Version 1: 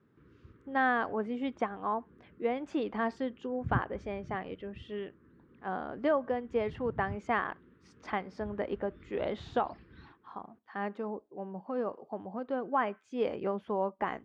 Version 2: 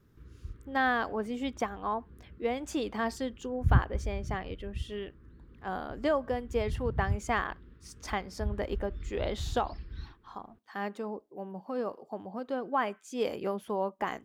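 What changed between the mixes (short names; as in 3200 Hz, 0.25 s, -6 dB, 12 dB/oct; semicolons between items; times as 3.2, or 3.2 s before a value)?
background: remove HPF 170 Hz 12 dB/oct; master: remove LPF 2400 Hz 12 dB/oct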